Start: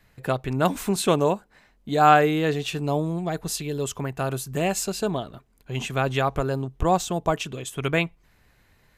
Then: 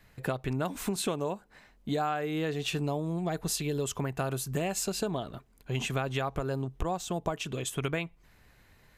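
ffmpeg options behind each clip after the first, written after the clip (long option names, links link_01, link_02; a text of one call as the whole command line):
ffmpeg -i in.wav -af "acompressor=threshold=-27dB:ratio=16" out.wav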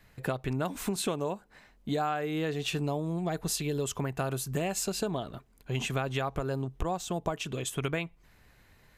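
ffmpeg -i in.wav -af anull out.wav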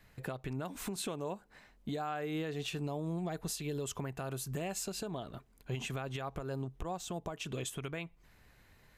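ffmpeg -i in.wav -af "alimiter=level_in=2dB:limit=-24dB:level=0:latency=1:release=263,volume=-2dB,volume=-2.5dB" out.wav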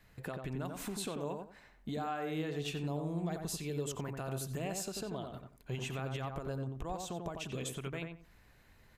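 ffmpeg -i in.wav -filter_complex "[0:a]asplit=2[link_01][link_02];[link_02]adelay=90,lowpass=frequency=1800:poles=1,volume=-4dB,asplit=2[link_03][link_04];[link_04]adelay=90,lowpass=frequency=1800:poles=1,volume=0.24,asplit=2[link_05][link_06];[link_06]adelay=90,lowpass=frequency=1800:poles=1,volume=0.24[link_07];[link_01][link_03][link_05][link_07]amix=inputs=4:normalize=0,volume=-1.5dB" out.wav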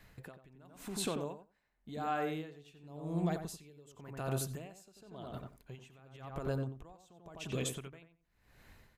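ffmpeg -i in.wav -af "aeval=exprs='val(0)*pow(10,-25*(0.5-0.5*cos(2*PI*0.92*n/s))/20)':channel_layout=same,volume=4dB" out.wav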